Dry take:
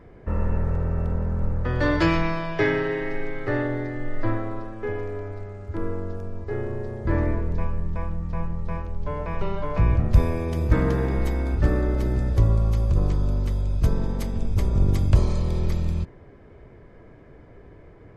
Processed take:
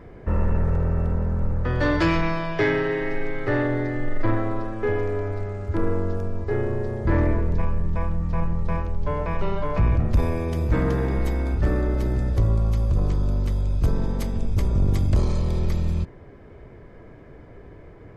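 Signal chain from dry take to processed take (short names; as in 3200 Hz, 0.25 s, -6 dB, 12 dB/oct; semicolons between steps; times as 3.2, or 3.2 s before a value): in parallel at +2 dB: vocal rider 2 s; on the sum: soft clip -7 dBFS, distortion -16 dB; gain -5 dB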